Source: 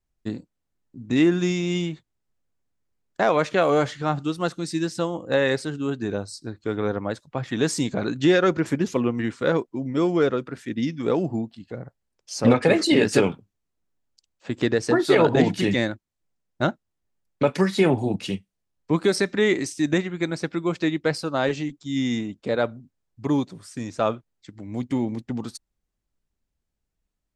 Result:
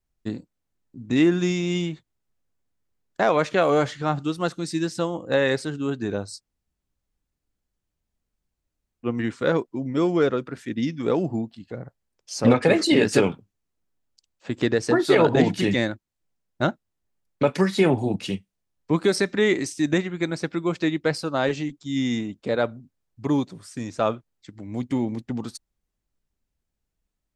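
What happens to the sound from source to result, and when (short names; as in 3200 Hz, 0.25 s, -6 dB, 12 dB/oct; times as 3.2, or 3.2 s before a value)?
6.38–9.06 room tone, crossfade 0.06 s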